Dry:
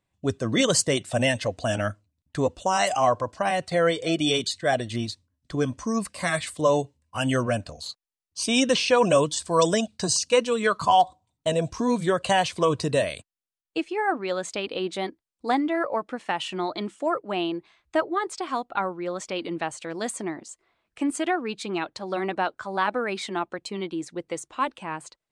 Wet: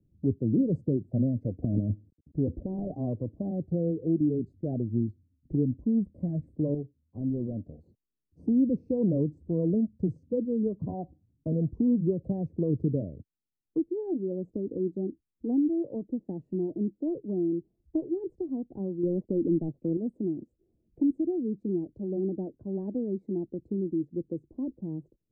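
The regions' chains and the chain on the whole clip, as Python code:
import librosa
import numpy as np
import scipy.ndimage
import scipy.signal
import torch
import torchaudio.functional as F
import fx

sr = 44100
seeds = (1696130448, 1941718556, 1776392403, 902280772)

y = fx.chain(x, sr, fx.cvsd(bps=64000),
    fx.transient(attack_db=-3, sustain_db=10),
    fx.moving_average(points=14), at=(1.62, 2.94))
y = fx.chain(y, sr, fx.low_shelf(hz=330.0, db=-9.5),
    fx.clip_hard(threshold_db=-26.0), at=(6.74, 7.87))
y = fx.chain(y, sr, fx.lowpass(hz=2800.0, slope=12),
    fx.leveller(passes=2), at=(19.03, 19.97))
y = scipy.signal.sosfilt(scipy.signal.cheby2(4, 60, 1200.0, 'lowpass', fs=sr, output='sos'), y)
y = fx.band_squash(y, sr, depth_pct=40)
y = y * 10.0 ** (2.5 / 20.0)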